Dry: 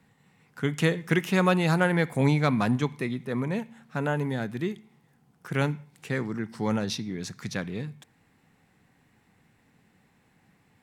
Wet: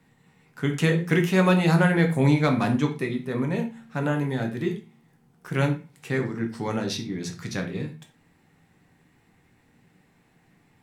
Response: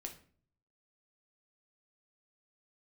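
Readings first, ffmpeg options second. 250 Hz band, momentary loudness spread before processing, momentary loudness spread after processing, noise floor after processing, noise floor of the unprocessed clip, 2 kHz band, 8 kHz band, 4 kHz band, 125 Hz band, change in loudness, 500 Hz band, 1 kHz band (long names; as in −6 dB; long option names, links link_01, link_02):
+3.5 dB, 12 LU, 13 LU, −63 dBFS, −65 dBFS, +2.0 dB, +1.5 dB, +1.5 dB, +3.5 dB, +3.0 dB, +2.5 dB, +1.0 dB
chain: -filter_complex "[1:a]atrim=start_sample=2205,afade=type=out:start_time=0.17:duration=0.01,atrim=end_sample=7938[link_01];[0:a][link_01]afir=irnorm=-1:irlink=0,volume=5.5dB"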